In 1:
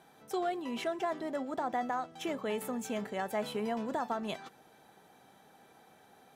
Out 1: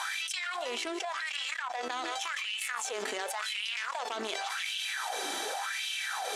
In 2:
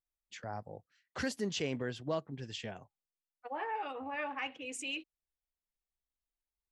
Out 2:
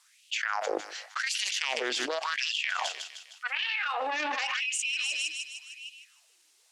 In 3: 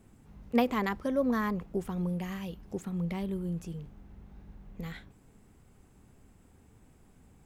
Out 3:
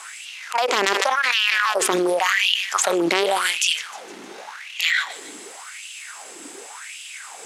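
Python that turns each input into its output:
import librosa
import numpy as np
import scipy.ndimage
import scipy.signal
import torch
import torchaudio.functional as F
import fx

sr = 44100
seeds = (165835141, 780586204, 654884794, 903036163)

p1 = fx.cheby_harmonics(x, sr, harmonics=(3, 7, 8), levels_db=(-20, -22, -32), full_scale_db=-12.0)
p2 = fx.weighting(p1, sr, curve='ITU-R 468')
p3 = p2 + fx.echo_thinned(p2, sr, ms=154, feedback_pct=53, hz=1100.0, wet_db=-19.5, dry=0)
p4 = fx.filter_lfo_highpass(p3, sr, shape='sine', hz=0.89, low_hz=300.0, high_hz=2900.0, q=5.7)
y = fx.env_flatten(p4, sr, amount_pct=100)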